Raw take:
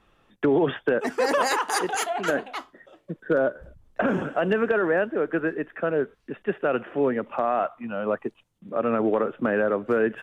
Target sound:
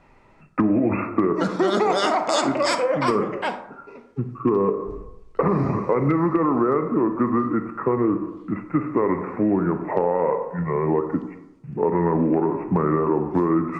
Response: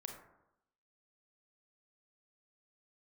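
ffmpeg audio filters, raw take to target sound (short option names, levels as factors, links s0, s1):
-filter_complex "[0:a]asetrate=32667,aresample=44100,asplit=2[s0][s1];[1:a]atrim=start_sample=2205,lowpass=8200[s2];[s1][s2]afir=irnorm=-1:irlink=0,volume=1.5[s3];[s0][s3]amix=inputs=2:normalize=0,acompressor=threshold=0.112:ratio=4,volume=1.26"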